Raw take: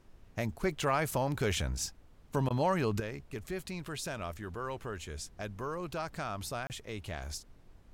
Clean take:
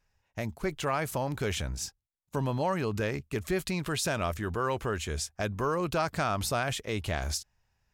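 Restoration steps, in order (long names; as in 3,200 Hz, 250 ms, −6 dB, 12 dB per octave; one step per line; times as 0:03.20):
repair the gap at 0:06.67, 29 ms
repair the gap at 0:02.49, 13 ms
noise reduction from a noise print 18 dB
level 0 dB, from 0:03.00 +8.5 dB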